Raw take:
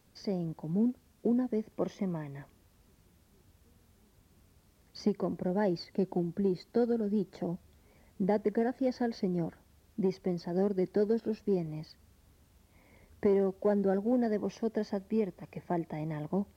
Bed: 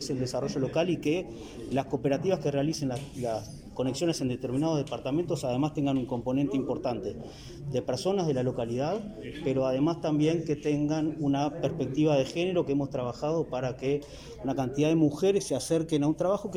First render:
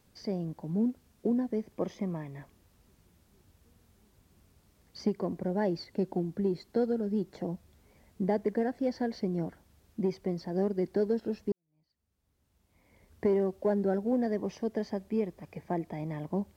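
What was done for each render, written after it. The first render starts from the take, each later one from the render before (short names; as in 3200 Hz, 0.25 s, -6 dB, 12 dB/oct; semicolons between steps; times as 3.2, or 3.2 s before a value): 11.52–13.25 fade in quadratic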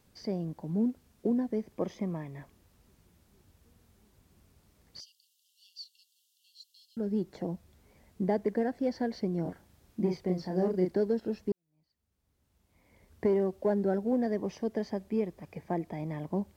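5–6.97 brick-wall FIR high-pass 2700 Hz; 9.42–10.92 doubler 33 ms -3.5 dB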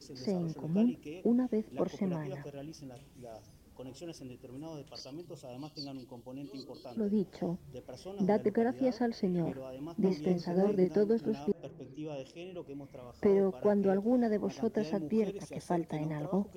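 add bed -17 dB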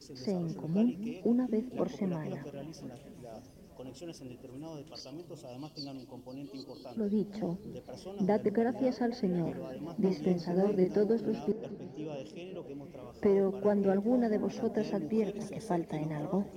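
delay with a stepping band-pass 0.227 s, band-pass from 250 Hz, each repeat 1.4 oct, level -11 dB; warbling echo 0.516 s, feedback 69%, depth 131 cents, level -19.5 dB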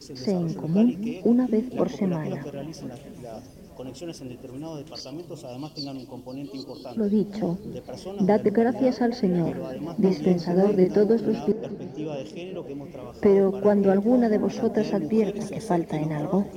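gain +8.5 dB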